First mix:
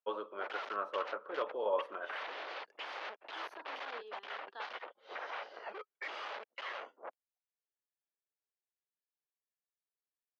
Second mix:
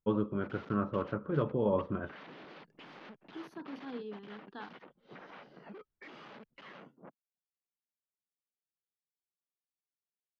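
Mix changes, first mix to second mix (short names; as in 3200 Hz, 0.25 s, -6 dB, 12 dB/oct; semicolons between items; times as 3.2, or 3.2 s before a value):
first voice: add air absorption 160 m; background -10.0 dB; master: remove HPF 520 Hz 24 dB/oct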